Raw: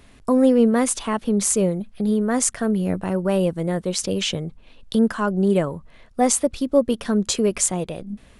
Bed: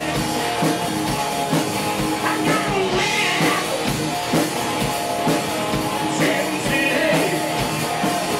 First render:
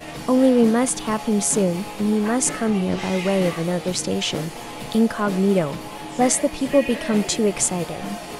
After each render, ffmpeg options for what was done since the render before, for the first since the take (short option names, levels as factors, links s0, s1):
-filter_complex "[1:a]volume=0.251[s0];[0:a][s0]amix=inputs=2:normalize=0"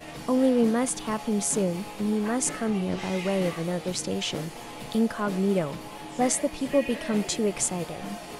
-af "volume=0.501"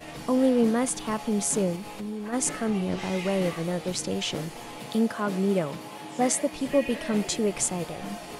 -filter_complex "[0:a]asplit=3[s0][s1][s2];[s0]afade=t=out:st=1.75:d=0.02[s3];[s1]acompressor=threshold=0.02:ratio=2.5:attack=3.2:release=140:knee=1:detection=peak,afade=t=in:st=1.75:d=0.02,afade=t=out:st=2.32:d=0.02[s4];[s2]afade=t=in:st=2.32:d=0.02[s5];[s3][s4][s5]amix=inputs=3:normalize=0,asettb=1/sr,asplit=3[s6][s7][s8];[s6]atrim=end=4.784[s9];[s7]atrim=start=4.78:end=6.56,asetpts=PTS-STARTPTS,afade=t=in:d=0.004:c=qsin,afade=t=out:st=1.776:d=0.004:c=qsin,highpass=110[s10];[s8]atrim=start=6.556[s11];[s9][s10]acrossfade=d=0.004:c1=hsin:c2=qsin[s12];[s12][s11]acrossfade=d=0.004:c1=qsin:c2=hsin"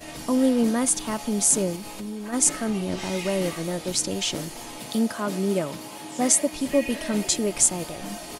-af "bass=f=250:g=2,treble=f=4000:g=8,aecho=1:1:3.2:0.3"